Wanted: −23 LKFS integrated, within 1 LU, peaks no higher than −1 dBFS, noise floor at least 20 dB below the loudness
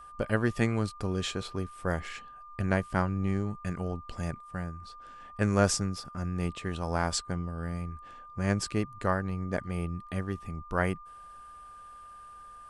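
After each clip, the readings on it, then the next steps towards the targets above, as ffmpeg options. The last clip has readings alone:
interfering tone 1,200 Hz; level of the tone −46 dBFS; integrated loudness −32.0 LKFS; sample peak −8.0 dBFS; target loudness −23.0 LKFS
→ -af "bandreject=frequency=1200:width=30"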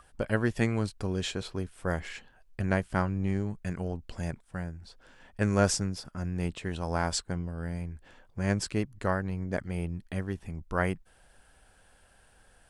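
interfering tone none found; integrated loudness −32.0 LKFS; sample peak −8.5 dBFS; target loudness −23.0 LKFS
→ -af "volume=9dB,alimiter=limit=-1dB:level=0:latency=1"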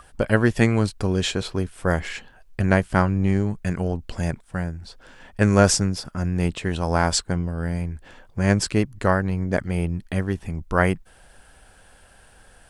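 integrated loudness −23.0 LKFS; sample peak −1.0 dBFS; background noise floor −52 dBFS

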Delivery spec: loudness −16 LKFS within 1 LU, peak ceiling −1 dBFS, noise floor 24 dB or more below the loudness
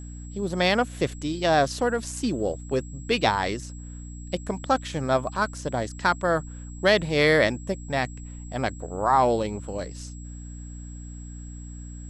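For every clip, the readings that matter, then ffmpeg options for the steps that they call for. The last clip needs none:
mains hum 60 Hz; hum harmonics up to 300 Hz; level of the hum −36 dBFS; interfering tone 7,700 Hz; level of the tone −48 dBFS; integrated loudness −25.0 LKFS; sample peak −6.0 dBFS; target loudness −16.0 LKFS
→ -af "bandreject=frequency=60:width_type=h:width=6,bandreject=frequency=120:width_type=h:width=6,bandreject=frequency=180:width_type=h:width=6,bandreject=frequency=240:width_type=h:width=6,bandreject=frequency=300:width_type=h:width=6"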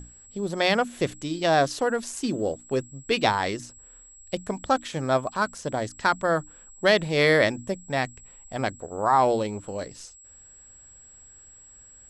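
mains hum none found; interfering tone 7,700 Hz; level of the tone −48 dBFS
→ -af "bandreject=frequency=7700:width=30"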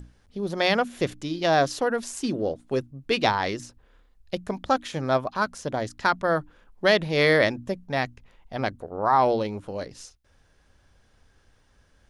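interfering tone none found; integrated loudness −25.5 LKFS; sample peak −5.5 dBFS; target loudness −16.0 LKFS
→ -af "volume=9.5dB,alimiter=limit=-1dB:level=0:latency=1"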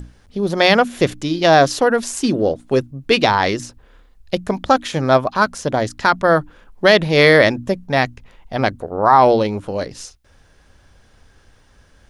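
integrated loudness −16.5 LKFS; sample peak −1.0 dBFS; background noise floor −52 dBFS

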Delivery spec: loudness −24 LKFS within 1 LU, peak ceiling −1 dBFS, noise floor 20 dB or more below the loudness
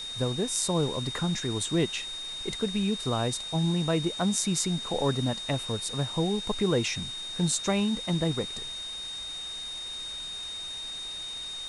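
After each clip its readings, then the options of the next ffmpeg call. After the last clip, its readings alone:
interfering tone 3,700 Hz; level of the tone −35 dBFS; background noise floor −38 dBFS; target noise floor −49 dBFS; integrated loudness −29.0 LKFS; sample peak −9.0 dBFS; target loudness −24.0 LKFS
→ -af "bandreject=frequency=3700:width=30"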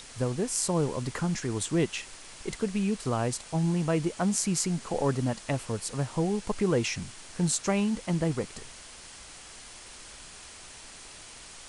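interfering tone none found; background noise floor −47 dBFS; target noise floor −50 dBFS
→ -af "afftdn=noise_reduction=6:noise_floor=-47"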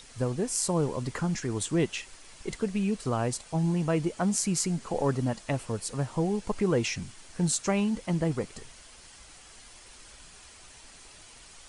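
background noise floor −52 dBFS; integrated loudness −29.5 LKFS; sample peak −9.5 dBFS; target loudness −24.0 LKFS
→ -af "volume=5.5dB"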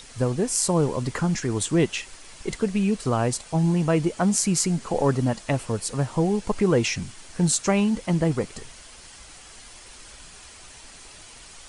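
integrated loudness −24.0 LKFS; sample peak −4.0 dBFS; background noise floor −46 dBFS

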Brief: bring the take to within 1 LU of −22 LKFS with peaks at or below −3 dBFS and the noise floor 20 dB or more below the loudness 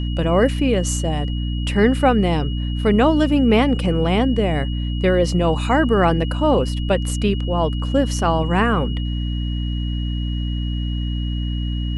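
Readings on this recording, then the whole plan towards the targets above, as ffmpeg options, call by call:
mains hum 60 Hz; hum harmonics up to 300 Hz; level of the hum −20 dBFS; interfering tone 2,900 Hz; level of the tone −35 dBFS; integrated loudness −19.5 LKFS; sample peak −3.0 dBFS; target loudness −22.0 LKFS
→ -af "bandreject=frequency=60:width_type=h:width=6,bandreject=frequency=120:width_type=h:width=6,bandreject=frequency=180:width_type=h:width=6,bandreject=frequency=240:width_type=h:width=6,bandreject=frequency=300:width_type=h:width=6"
-af "bandreject=frequency=2900:width=30"
-af "volume=-2.5dB"

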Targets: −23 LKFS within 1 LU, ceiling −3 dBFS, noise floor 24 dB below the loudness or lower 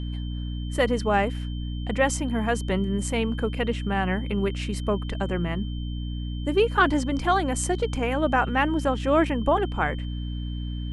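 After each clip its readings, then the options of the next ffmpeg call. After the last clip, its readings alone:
mains hum 60 Hz; hum harmonics up to 300 Hz; level of the hum −28 dBFS; interfering tone 3,100 Hz; level of the tone −45 dBFS; integrated loudness −25.5 LKFS; sample peak −7.0 dBFS; target loudness −23.0 LKFS
→ -af "bandreject=frequency=60:width_type=h:width=4,bandreject=frequency=120:width_type=h:width=4,bandreject=frequency=180:width_type=h:width=4,bandreject=frequency=240:width_type=h:width=4,bandreject=frequency=300:width_type=h:width=4"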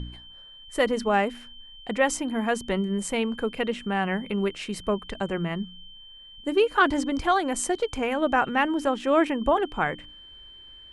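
mains hum none found; interfering tone 3,100 Hz; level of the tone −45 dBFS
→ -af "bandreject=frequency=3100:width=30"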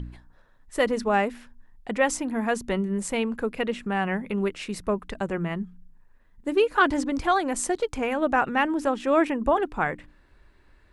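interfering tone none found; integrated loudness −26.0 LKFS; sample peak −8.0 dBFS; target loudness −23.0 LKFS
→ -af "volume=3dB"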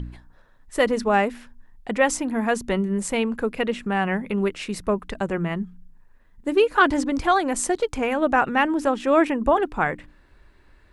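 integrated loudness −23.0 LKFS; sample peak −5.0 dBFS; background noise floor −55 dBFS

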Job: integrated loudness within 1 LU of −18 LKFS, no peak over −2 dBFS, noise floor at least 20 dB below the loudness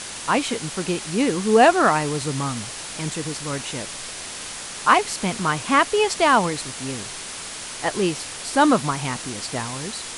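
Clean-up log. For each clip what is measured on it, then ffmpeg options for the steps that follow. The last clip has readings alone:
background noise floor −34 dBFS; target noise floor −42 dBFS; integrated loudness −22.0 LKFS; sample peak −1.5 dBFS; target loudness −18.0 LKFS
→ -af "afftdn=noise_reduction=8:noise_floor=-34"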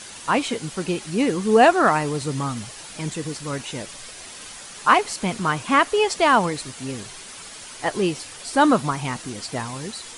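background noise floor −40 dBFS; target noise floor −42 dBFS
→ -af "afftdn=noise_reduction=6:noise_floor=-40"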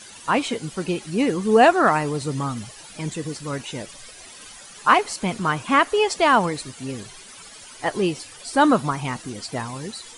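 background noise floor −43 dBFS; integrated loudness −21.5 LKFS; sample peak −1.5 dBFS; target loudness −18.0 LKFS
→ -af "volume=3.5dB,alimiter=limit=-2dB:level=0:latency=1"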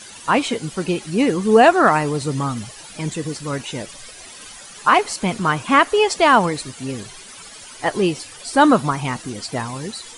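integrated loudness −18.5 LKFS; sample peak −2.0 dBFS; background noise floor −40 dBFS

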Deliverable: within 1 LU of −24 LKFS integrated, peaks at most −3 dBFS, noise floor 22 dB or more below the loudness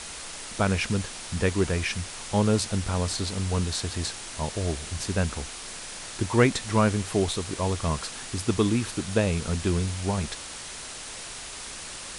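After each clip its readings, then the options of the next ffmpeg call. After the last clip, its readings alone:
background noise floor −39 dBFS; target noise floor −50 dBFS; integrated loudness −28.0 LKFS; sample peak −5.5 dBFS; target loudness −24.0 LKFS
→ -af "afftdn=noise_reduction=11:noise_floor=-39"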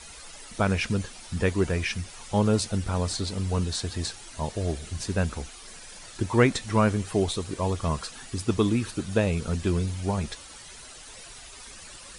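background noise floor −45 dBFS; target noise floor −50 dBFS
→ -af "afftdn=noise_reduction=6:noise_floor=-45"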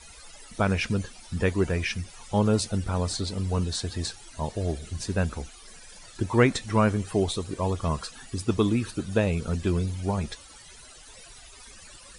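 background noise floor −48 dBFS; target noise floor −50 dBFS
→ -af "afftdn=noise_reduction=6:noise_floor=-48"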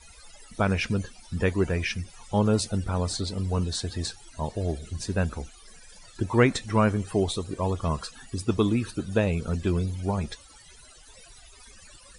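background noise floor −51 dBFS; integrated loudness −27.5 LKFS; sample peak −5.5 dBFS; target loudness −24.0 LKFS
→ -af "volume=3.5dB,alimiter=limit=-3dB:level=0:latency=1"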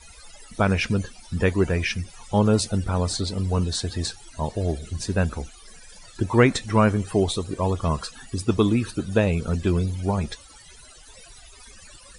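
integrated loudness −24.0 LKFS; sample peak −3.0 dBFS; background noise floor −48 dBFS

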